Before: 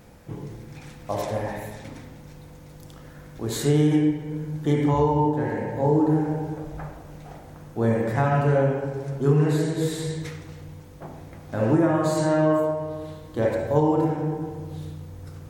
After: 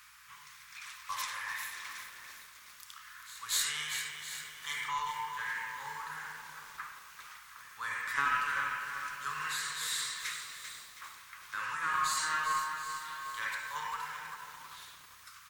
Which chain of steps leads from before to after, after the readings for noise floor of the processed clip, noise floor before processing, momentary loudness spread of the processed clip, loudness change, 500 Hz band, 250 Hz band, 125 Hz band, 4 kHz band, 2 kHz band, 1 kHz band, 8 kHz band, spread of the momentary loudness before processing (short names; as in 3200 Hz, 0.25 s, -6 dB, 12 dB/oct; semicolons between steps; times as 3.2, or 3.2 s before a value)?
-55 dBFS, -45 dBFS, 18 LU, -12.0 dB, -36.0 dB, -39.5 dB, -37.0 dB, +3.5 dB, +3.0 dB, -6.0 dB, +3.0 dB, 21 LU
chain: on a send: echo 0.717 s -16 dB; on the sum: hum 60 Hz, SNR 18 dB; elliptic high-pass 1100 Hz, stop band 40 dB; pre-echo 0.239 s -21 dB; in parallel at -6 dB: one-sided clip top -39.5 dBFS; on the sum: lo-fi delay 0.394 s, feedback 55%, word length 8-bit, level -8 dB